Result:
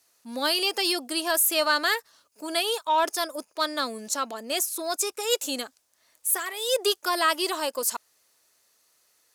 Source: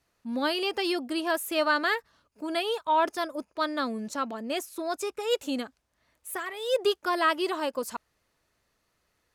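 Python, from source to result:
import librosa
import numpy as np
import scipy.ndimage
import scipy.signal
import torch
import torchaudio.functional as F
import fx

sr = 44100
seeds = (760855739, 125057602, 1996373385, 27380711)

p1 = scipy.signal.sosfilt(scipy.signal.butter(2, 68.0, 'highpass', fs=sr, output='sos'), x)
p2 = fx.bass_treble(p1, sr, bass_db=-14, treble_db=14)
p3 = 10.0 ** (-26.0 / 20.0) * np.tanh(p2 / 10.0 ** (-26.0 / 20.0))
y = p2 + F.gain(torch.from_numpy(p3), -11.0).numpy()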